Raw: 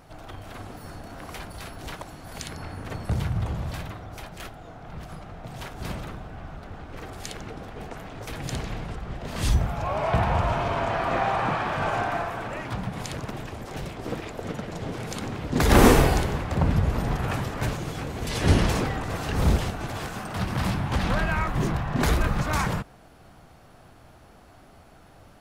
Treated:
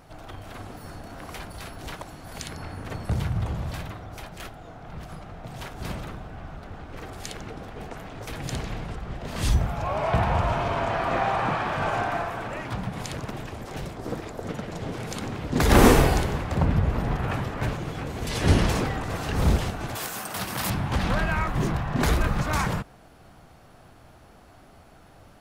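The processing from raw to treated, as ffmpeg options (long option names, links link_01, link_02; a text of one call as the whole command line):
ffmpeg -i in.wav -filter_complex "[0:a]asettb=1/sr,asplit=3[link_01][link_02][link_03];[link_01]atrim=end=13.864[link_04];[link_02]atrim=start=13.86:end=14.49,asetpts=PTS-STARTPTS,afade=type=in:duration=0.004:curve=qsin,afade=type=out:start_time=0.626:duration=0.004:curve=qsin,equalizer=frequency=2700:width_type=o:width=0.96:gain=-6[link_05];[link_03]atrim=start=14.486[link_06];[link_04][link_05]acrossfade=duration=0.004:curve1=hsin:curve2=qsin[link_07];[link_07][link_06]acrossfade=duration=0.004:curve1=qsin:curve2=hsin,asettb=1/sr,asplit=3[link_08][link_09][link_10];[link_08]atrim=end=16.654[link_11];[link_09]atrim=start=16.65:end=18.06,asetpts=PTS-STARTPTS,afade=type=in:duration=0.004:curve=qsin,afade=type=out:start_time=1.406:duration=0.004:curve=qsin,bass=frequency=250:gain=0,treble=frequency=4000:gain=-7[link_12];[link_10]atrim=start=18.056[link_13];[link_11][link_12]acrossfade=duration=0.004:curve1=hsin:curve2=qsin[link_14];[link_14][link_13]acrossfade=duration=0.004:curve1=qsin:curve2=hsin,asettb=1/sr,asplit=3[link_15][link_16][link_17];[link_15]atrim=end=19.954[link_18];[link_16]atrim=start=19.95:end=20.7,asetpts=PTS-STARTPTS,afade=type=in:duration=0.004:curve=qsin,afade=type=out:start_time=0.746:duration=0.004:curve=qsin,aemphasis=mode=production:type=bsi[link_19];[link_17]atrim=start=20.696[link_20];[link_18][link_19]acrossfade=duration=0.004:curve1=hsin:curve2=qsin[link_21];[link_21][link_20]acrossfade=duration=0.004:curve1=qsin:curve2=hsin" out.wav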